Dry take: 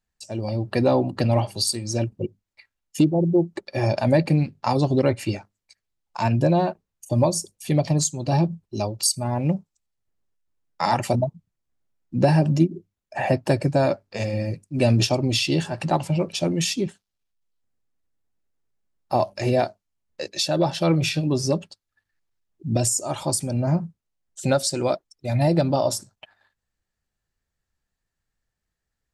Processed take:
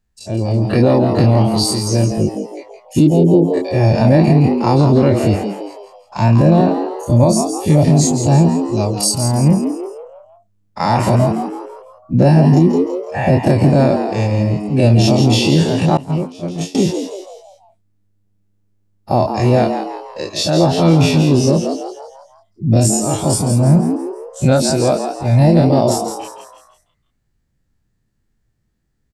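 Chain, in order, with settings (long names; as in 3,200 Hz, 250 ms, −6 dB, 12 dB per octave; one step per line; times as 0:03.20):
every bin's largest magnitude spread in time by 60 ms
low-shelf EQ 360 Hz +10.5 dB
on a send: echo with shifted repeats 166 ms, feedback 44%, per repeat +100 Hz, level −8 dB
0:15.97–0:16.75: on the sum: downward expander −4 dBFS
boost into a limiter +1 dB
level −1 dB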